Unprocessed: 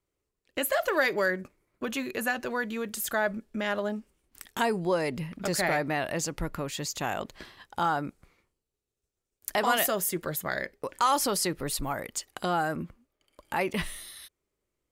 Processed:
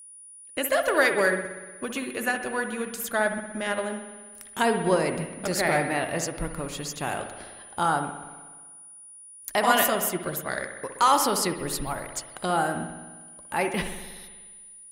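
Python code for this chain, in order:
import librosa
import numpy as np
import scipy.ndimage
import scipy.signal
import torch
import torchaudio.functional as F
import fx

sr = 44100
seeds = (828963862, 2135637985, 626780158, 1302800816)

y = fx.rev_spring(x, sr, rt60_s=1.5, pass_ms=(60,), chirp_ms=80, drr_db=4.5)
y = y + 10.0 ** (-42.0 / 20.0) * np.sin(2.0 * np.pi * 9700.0 * np.arange(len(y)) / sr)
y = fx.upward_expand(y, sr, threshold_db=-35.0, expansion=1.5)
y = F.gain(torch.from_numpy(y), 4.5).numpy()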